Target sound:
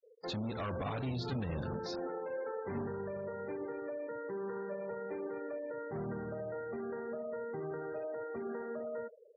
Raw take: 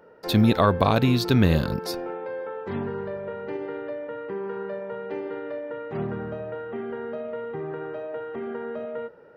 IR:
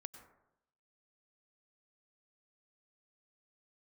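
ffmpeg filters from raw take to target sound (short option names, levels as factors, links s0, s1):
-filter_complex "[0:a]asplit=2[s0][s1];[s1]adelay=72,lowpass=f=2000:p=1,volume=0.158,asplit=2[s2][s3];[s3]adelay=72,lowpass=f=2000:p=1,volume=0.51,asplit=2[s4][s5];[s5]adelay=72,lowpass=f=2000:p=1,volume=0.51,asplit=2[s6][s7];[s7]adelay=72,lowpass=f=2000:p=1,volume=0.51,asplit=2[s8][s9];[s9]adelay=72,lowpass=f=2000:p=1,volume=0.51[s10];[s2][s4][s6][s8][s10]amix=inputs=5:normalize=0[s11];[s0][s11]amix=inputs=2:normalize=0,aresample=32000,aresample=44100,asettb=1/sr,asplit=3[s12][s13][s14];[s12]atrim=end=0.864[s15];[s13]atrim=start=0.86:end=1.36,asetpts=PTS-STARTPTS,afade=t=in:d=0.004:c=qsin,afade=t=out:st=0.496:d=0.004:c=qsin,aecho=1:1:7:0.44,atrim=end_sample=22050[s16];[s14]atrim=start=1.356[s17];[s15][s16]acrossfade=d=0.004:c1=hsin:c2=qsin[s18];[s18][s17]acrossfade=d=0.004:c1=qsin:c2=hsin,asplit=2[s19][s20];[s20]aeval=exprs='sgn(val(0))*max(abs(val(0))-0.00944,0)':c=same,volume=0.631[s21];[s19][s21]amix=inputs=2:normalize=0,acompressor=threshold=0.112:ratio=3,asoftclip=type=tanh:threshold=0.0562,afftfilt=real='re*gte(hypot(re,im),0.0158)':imag='im*gte(hypot(re,im),0.0158)':win_size=1024:overlap=0.75,alimiter=level_in=1.33:limit=0.0631:level=0:latency=1:release=67,volume=0.75,highpass=41,volume=0.447" -ar 44100 -c:a aac -b:a 24k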